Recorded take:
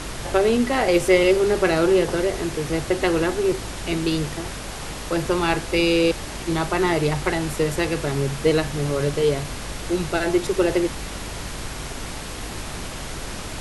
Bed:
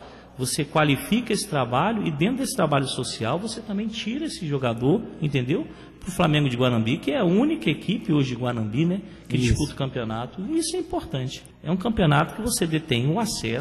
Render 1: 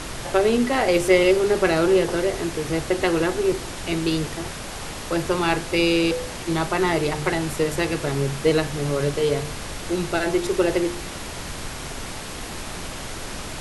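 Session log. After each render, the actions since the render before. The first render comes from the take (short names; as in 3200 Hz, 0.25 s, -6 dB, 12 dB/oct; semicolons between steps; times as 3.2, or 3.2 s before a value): de-hum 50 Hz, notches 10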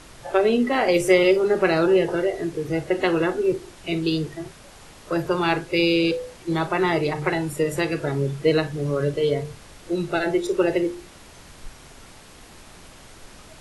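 noise print and reduce 13 dB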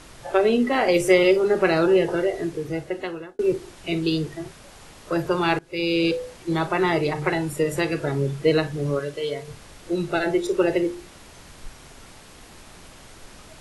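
2.44–3.39 fade out; 5.59–6.06 fade in, from -21 dB; 8.99–9.48 low shelf 470 Hz -12 dB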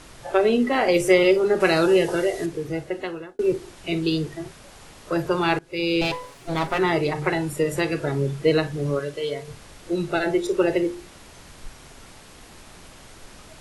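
1.6–2.46 high shelf 3900 Hz +11 dB; 6.01–6.79 minimum comb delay 7.2 ms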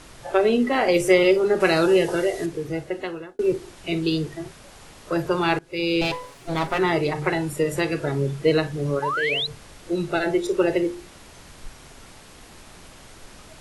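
9.02–9.47 painted sound rise 830–4200 Hz -25 dBFS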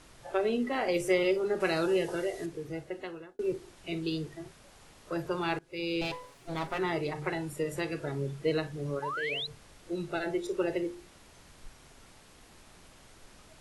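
gain -10 dB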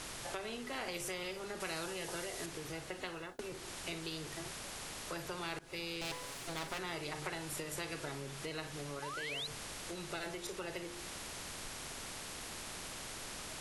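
compressor 3:1, threshold -39 dBFS, peak gain reduction 13 dB; spectral compressor 2:1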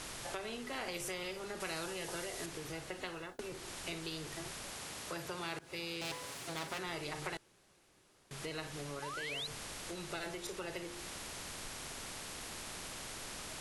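4.73–6.87 HPF 62 Hz; 7.37–8.31 room tone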